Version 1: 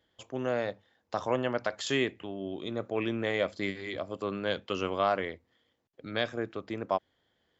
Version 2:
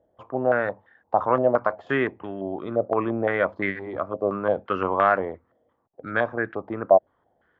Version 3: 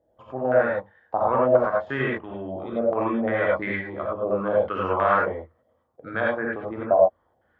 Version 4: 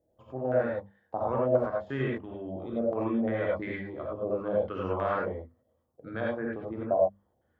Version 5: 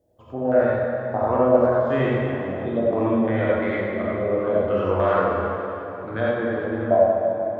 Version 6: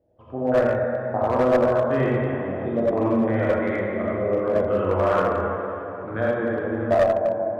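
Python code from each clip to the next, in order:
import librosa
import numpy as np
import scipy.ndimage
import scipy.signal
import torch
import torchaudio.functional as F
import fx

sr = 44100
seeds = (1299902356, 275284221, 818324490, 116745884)

y1 = fx.filter_held_lowpass(x, sr, hz=5.8, low_hz=640.0, high_hz=1700.0)
y1 = F.gain(torch.from_numpy(y1), 4.5).numpy()
y2 = fx.rev_gated(y1, sr, seeds[0], gate_ms=120, shape='rising', drr_db=-3.5)
y2 = F.gain(torch.from_numpy(y2), -5.0).numpy()
y3 = fx.peak_eq(y2, sr, hz=1400.0, db=-12.0, octaves=2.9)
y3 = fx.hum_notches(y3, sr, base_hz=50, count=5)
y4 = fx.rev_plate(y3, sr, seeds[1], rt60_s=3.4, hf_ratio=0.8, predelay_ms=0, drr_db=-1.0)
y4 = F.gain(torch.from_numpy(y4), 6.0).numpy()
y5 = scipy.signal.sosfilt(scipy.signal.butter(2, 2400.0, 'lowpass', fs=sr, output='sos'), y4)
y5 = fx.clip_asym(y5, sr, top_db=-15.5, bottom_db=-10.5)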